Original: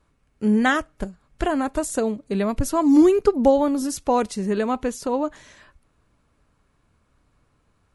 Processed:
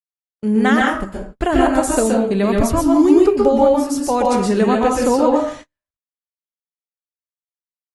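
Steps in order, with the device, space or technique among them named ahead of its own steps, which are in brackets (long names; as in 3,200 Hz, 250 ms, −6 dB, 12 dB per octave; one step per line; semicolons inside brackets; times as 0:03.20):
downward expander −42 dBFS
speakerphone in a meeting room (convolution reverb RT60 0.50 s, pre-delay 117 ms, DRR −1.5 dB; automatic gain control gain up to 11 dB; noise gate −32 dBFS, range −41 dB; level −1 dB; Opus 32 kbit/s 48,000 Hz)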